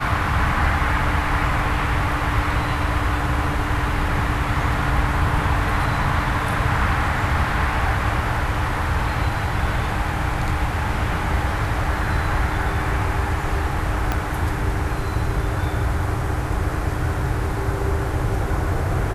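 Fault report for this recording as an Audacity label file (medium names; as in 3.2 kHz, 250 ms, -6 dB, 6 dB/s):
14.120000	14.120000	pop -8 dBFS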